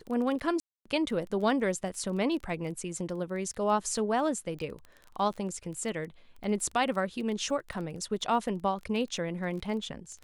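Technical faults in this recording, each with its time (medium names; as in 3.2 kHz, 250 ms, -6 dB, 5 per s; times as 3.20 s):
crackle 16 per s -37 dBFS
0.60–0.85 s: dropout 255 ms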